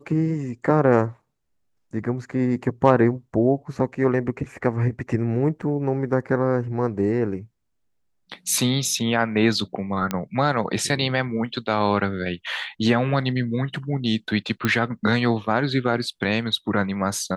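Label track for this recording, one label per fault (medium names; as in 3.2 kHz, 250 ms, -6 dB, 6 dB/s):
5.620000	5.630000	dropout 5.9 ms
10.110000	10.110000	pop -10 dBFS
14.650000	14.650000	pop -8 dBFS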